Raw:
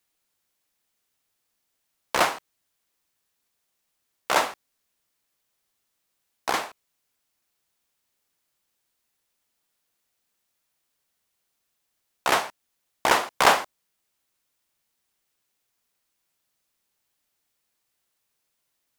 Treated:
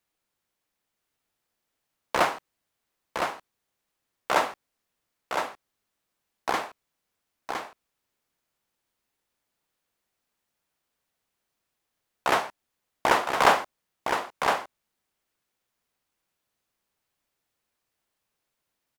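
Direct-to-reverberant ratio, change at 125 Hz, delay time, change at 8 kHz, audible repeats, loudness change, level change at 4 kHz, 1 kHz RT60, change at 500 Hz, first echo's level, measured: none, +1.0 dB, 1.012 s, -6.0 dB, 1, -3.0 dB, -3.5 dB, none, +0.5 dB, -5.5 dB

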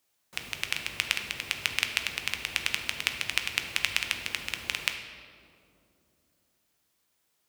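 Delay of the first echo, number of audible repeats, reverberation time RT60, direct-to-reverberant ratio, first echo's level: none, none, 2.8 s, 5.0 dB, none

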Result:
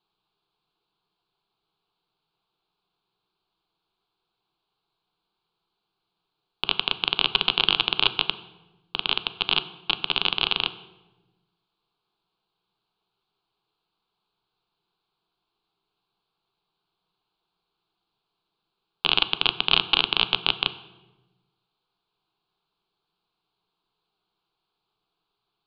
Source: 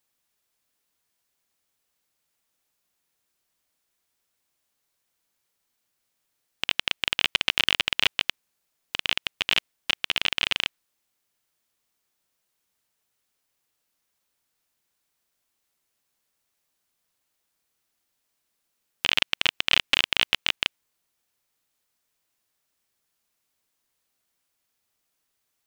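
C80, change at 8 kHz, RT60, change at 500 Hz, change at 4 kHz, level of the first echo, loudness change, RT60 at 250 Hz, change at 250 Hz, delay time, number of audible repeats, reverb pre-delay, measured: 16.5 dB, under -30 dB, 1.2 s, +3.5 dB, +2.5 dB, none, +1.5 dB, 1.6 s, +4.5 dB, none, none, 3 ms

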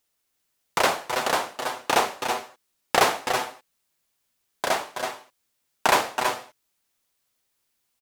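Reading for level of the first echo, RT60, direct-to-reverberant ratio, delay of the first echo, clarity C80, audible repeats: -8.5 dB, none, none, 0.325 s, none, 1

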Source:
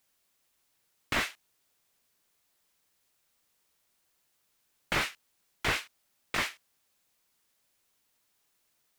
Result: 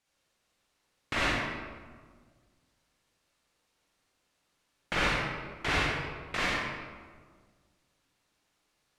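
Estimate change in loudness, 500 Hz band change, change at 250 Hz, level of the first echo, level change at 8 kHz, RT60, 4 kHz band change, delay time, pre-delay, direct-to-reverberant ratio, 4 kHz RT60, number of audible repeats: +1.0 dB, +5.0 dB, +5.5 dB, none, -2.5 dB, 1.6 s, +1.5 dB, none, 40 ms, -5.5 dB, 0.95 s, none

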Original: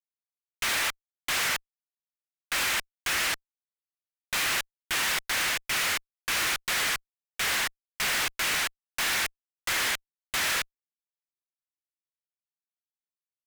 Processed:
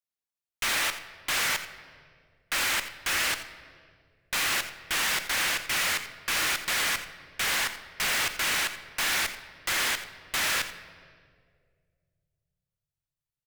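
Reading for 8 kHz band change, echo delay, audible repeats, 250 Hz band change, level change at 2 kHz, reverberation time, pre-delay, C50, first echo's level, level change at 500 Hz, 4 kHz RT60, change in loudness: +0.5 dB, 86 ms, 1, +1.0 dB, +0.5 dB, 2.1 s, 4 ms, 10.0 dB, -14.0 dB, +0.5 dB, 1.4 s, +0.5 dB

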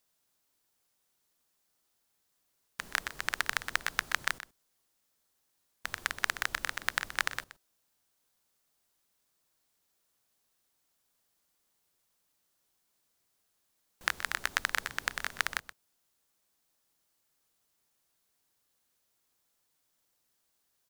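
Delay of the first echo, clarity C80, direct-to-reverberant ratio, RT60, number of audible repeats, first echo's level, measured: 0.125 s, none, none, none, 1, -14.0 dB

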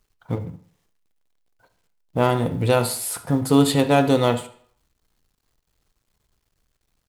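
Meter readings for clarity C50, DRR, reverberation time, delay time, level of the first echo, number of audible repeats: 13.0 dB, 9.5 dB, 0.55 s, 72 ms, -18.0 dB, 1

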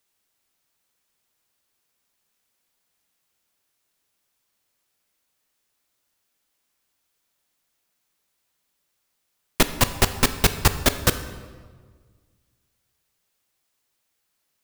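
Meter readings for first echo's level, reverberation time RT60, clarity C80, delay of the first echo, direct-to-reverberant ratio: none, 1.6 s, 13.0 dB, none, 10.0 dB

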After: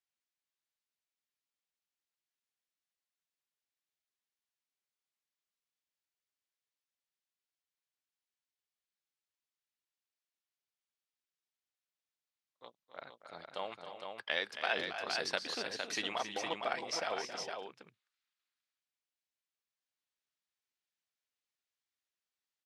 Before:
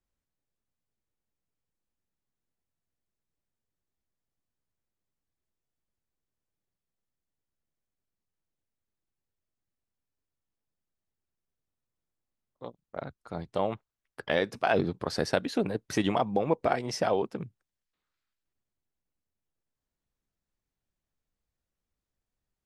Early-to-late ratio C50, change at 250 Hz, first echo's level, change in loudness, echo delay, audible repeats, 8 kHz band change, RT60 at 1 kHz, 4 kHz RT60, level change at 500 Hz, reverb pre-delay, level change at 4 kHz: none, -18.0 dB, -10.0 dB, -8.0 dB, 0.271 s, 3, -1.5 dB, none, none, -12.0 dB, none, +1.0 dB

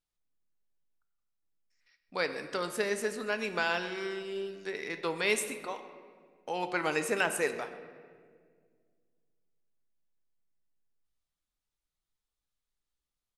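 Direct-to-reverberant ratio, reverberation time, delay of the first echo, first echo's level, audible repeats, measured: 7.5 dB, 1.8 s, 0.128 s, -19.0 dB, 1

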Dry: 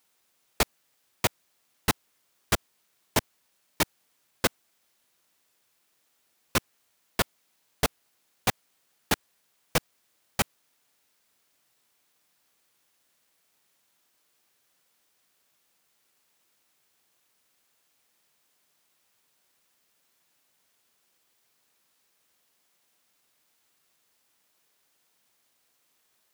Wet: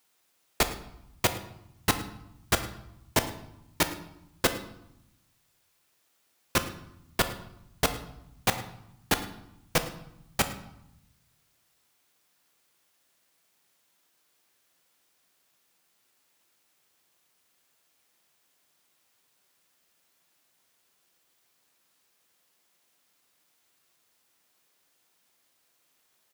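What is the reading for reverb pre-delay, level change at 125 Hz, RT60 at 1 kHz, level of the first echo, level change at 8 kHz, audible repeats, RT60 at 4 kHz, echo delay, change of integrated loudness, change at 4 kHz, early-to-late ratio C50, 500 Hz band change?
3 ms, +1.0 dB, 0.85 s, -19.0 dB, +0.5 dB, 1, 0.60 s, 0.107 s, -0.5 dB, +0.5 dB, 11.0 dB, +1.0 dB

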